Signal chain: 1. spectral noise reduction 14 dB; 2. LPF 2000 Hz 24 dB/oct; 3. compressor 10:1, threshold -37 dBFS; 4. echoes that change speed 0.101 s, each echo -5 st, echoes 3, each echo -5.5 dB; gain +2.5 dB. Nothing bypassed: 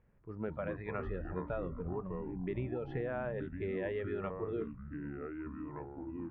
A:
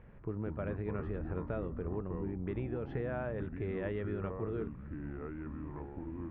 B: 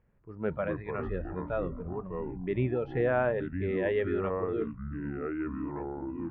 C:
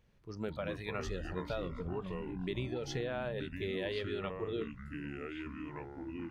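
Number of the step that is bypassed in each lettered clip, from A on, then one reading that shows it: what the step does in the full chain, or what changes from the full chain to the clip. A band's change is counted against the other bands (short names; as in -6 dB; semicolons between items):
1, 125 Hz band +4.5 dB; 3, mean gain reduction 4.5 dB; 2, 2 kHz band +3.5 dB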